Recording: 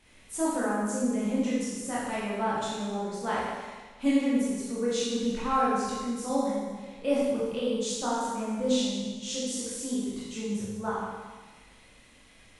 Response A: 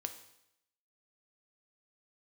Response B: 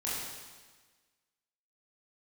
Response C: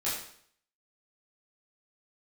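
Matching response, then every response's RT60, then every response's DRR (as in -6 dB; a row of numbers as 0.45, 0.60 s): B; 0.80, 1.4, 0.60 s; 6.5, -8.0, -10.0 dB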